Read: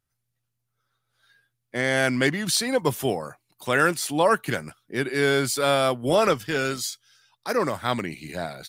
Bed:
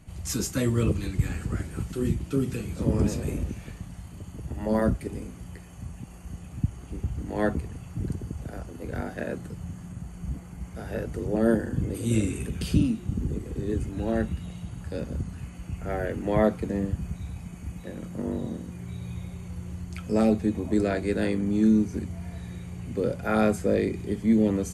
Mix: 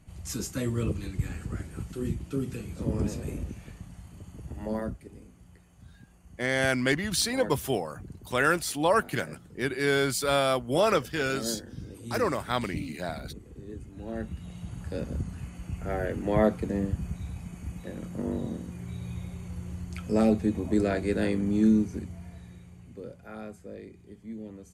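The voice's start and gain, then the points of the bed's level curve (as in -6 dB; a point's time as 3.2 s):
4.65 s, -3.5 dB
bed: 4.66 s -5 dB
4.97 s -13 dB
13.87 s -13 dB
14.72 s -1 dB
21.68 s -1 dB
23.44 s -19 dB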